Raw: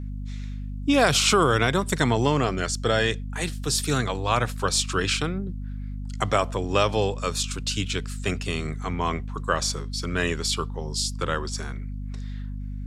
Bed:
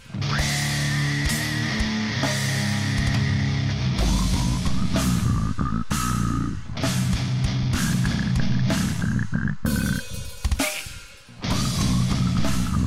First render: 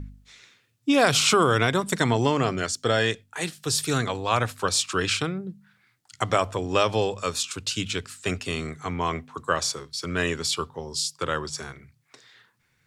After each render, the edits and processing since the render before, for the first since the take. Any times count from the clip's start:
hum removal 50 Hz, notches 5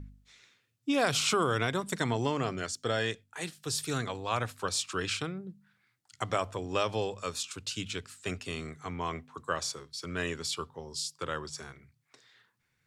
level −8 dB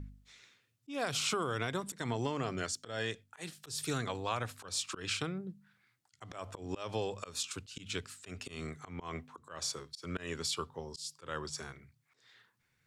downward compressor 6 to 1, threshold −30 dBFS, peak gain reduction 8.5 dB
volume swells 159 ms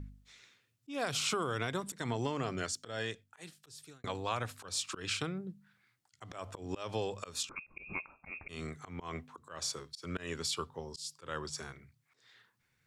0:02.88–0:04.04: fade out
0:07.49–0:08.49: voice inversion scrambler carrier 2,600 Hz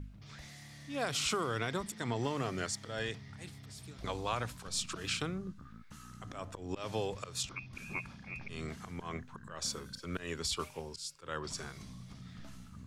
mix in bed −28 dB

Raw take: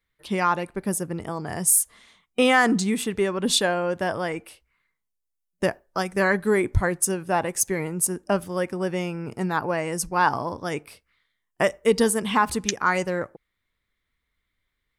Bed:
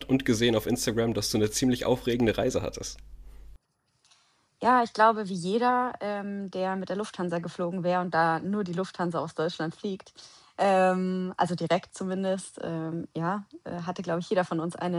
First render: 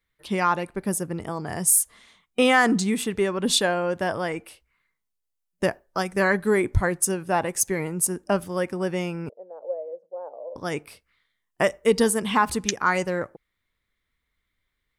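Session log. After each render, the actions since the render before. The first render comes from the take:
0:09.29–0:10.56: flat-topped band-pass 550 Hz, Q 4.1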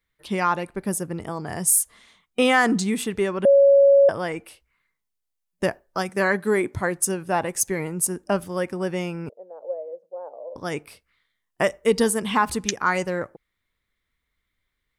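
0:03.45–0:04.09: beep over 557 Hz −10.5 dBFS
0:06.09–0:06.97: high-pass filter 160 Hz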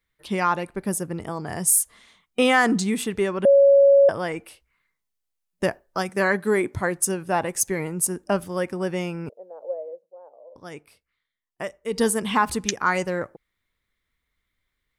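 0:09.89–0:12.05: duck −10 dB, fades 0.16 s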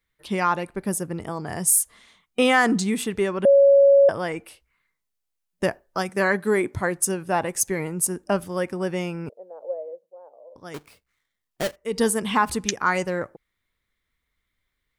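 0:10.74–0:11.76: each half-wave held at its own peak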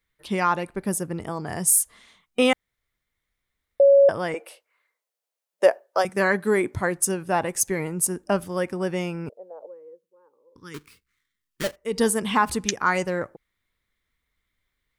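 0:02.53–0:03.80: fill with room tone
0:04.34–0:06.05: high-pass with resonance 540 Hz, resonance Q 3
0:09.66–0:11.64: Butterworth band-reject 670 Hz, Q 1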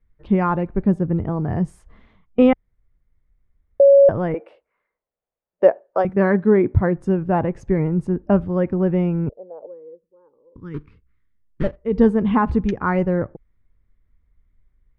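low-pass filter 2,600 Hz 12 dB per octave
spectral tilt −4.5 dB per octave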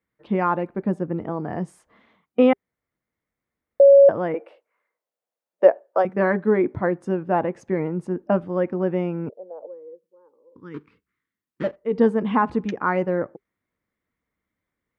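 high-pass filter 270 Hz 12 dB per octave
notch filter 400 Hz, Q 12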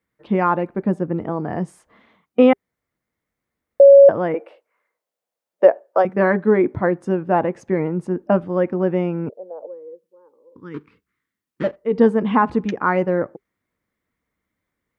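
level +3.5 dB
brickwall limiter −1 dBFS, peak gain reduction 2.5 dB

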